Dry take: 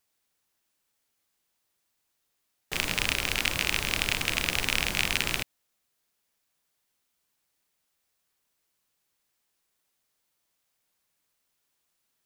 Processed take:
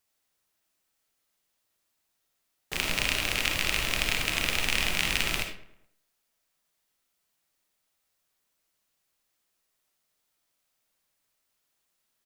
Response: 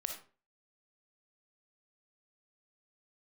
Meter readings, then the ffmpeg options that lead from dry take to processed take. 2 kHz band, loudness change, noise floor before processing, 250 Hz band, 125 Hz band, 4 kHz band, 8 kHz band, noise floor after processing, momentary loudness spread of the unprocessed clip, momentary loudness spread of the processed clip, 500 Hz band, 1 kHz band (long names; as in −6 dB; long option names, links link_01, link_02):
0.0 dB, 0.0 dB, −78 dBFS, −0.5 dB, −0.5 dB, 0.0 dB, 0.0 dB, −78 dBFS, 5 LU, 5 LU, +0.5 dB, 0.0 dB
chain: -filter_complex "[0:a]asplit=2[link_01][link_02];[link_02]adelay=106,lowpass=frequency=2800:poles=1,volume=-17dB,asplit=2[link_03][link_04];[link_04]adelay=106,lowpass=frequency=2800:poles=1,volume=0.51,asplit=2[link_05][link_06];[link_06]adelay=106,lowpass=frequency=2800:poles=1,volume=0.51,asplit=2[link_07][link_08];[link_08]adelay=106,lowpass=frequency=2800:poles=1,volume=0.51[link_09];[link_01][link_03][link_05][link_07][link_09]amix=inputs=5:normalize=0[link_10];[1:a]atrim=start_sample=2205[link_11];[link_10][link_11]afir=irnorm=-1:irlink=0"